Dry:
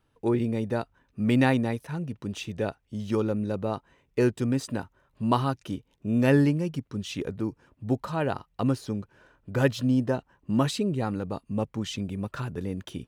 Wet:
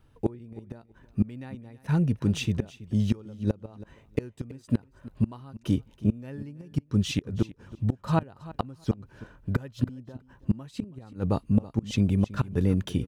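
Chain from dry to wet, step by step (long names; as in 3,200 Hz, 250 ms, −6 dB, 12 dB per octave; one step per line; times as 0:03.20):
low-shelf EQ 180 Hz +10 dB
gate with flip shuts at −16 dBFS, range −27 dB
on a send: repeating echo 326 ms, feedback 15%, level −18 dB
on the sum: level +4 dB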